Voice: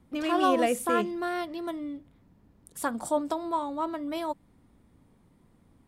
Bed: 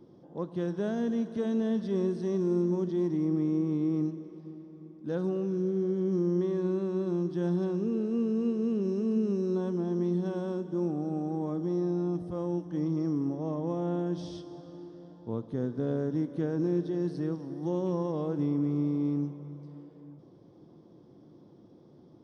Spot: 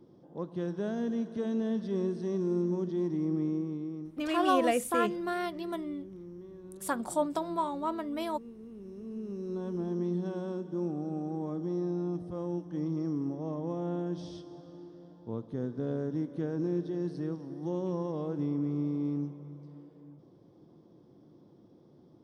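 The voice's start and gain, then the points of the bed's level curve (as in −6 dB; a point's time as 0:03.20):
4.05 s, −2.0 dB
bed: 0:03.47 −2.5 dB
0:04.42 −18.5 dB
0:08.70 −18.5 dB
0:09.80 −3 dB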